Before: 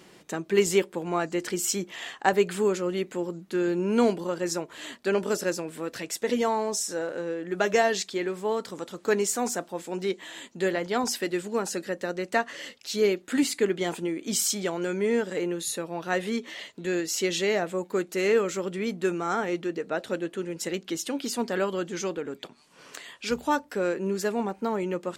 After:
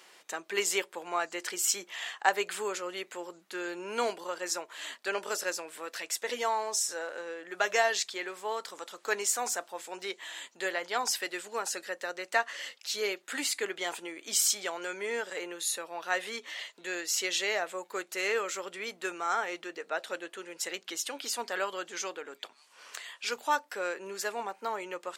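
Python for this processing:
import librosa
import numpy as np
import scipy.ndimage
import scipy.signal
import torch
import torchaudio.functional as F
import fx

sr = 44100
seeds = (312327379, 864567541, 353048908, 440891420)

y = scipy.signal.sosfilt(scipy.signal.butter(2, 760.0, 'highpass', fs=sr, output='sos'), x)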